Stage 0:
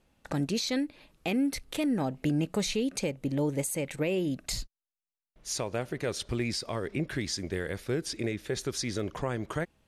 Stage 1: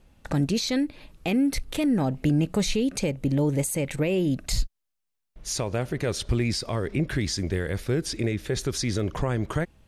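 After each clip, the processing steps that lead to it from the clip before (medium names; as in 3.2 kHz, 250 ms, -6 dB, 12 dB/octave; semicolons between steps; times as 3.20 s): in parallel at -1 dB: peak limiter -28.5 dBFS, peak gain reduction 8.5 dB; on the sum: bass shelf 130 Hz +10.5 dB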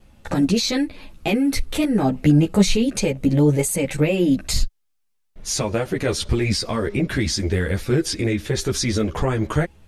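vibrato 0.46 Hz 6.1 cents; three-phase chorus; trim +9 dB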